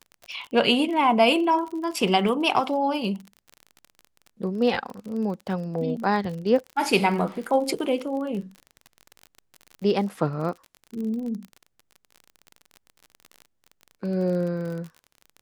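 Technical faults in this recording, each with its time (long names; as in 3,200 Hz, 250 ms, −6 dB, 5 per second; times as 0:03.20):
surface crackle 38 per second −32 dBFS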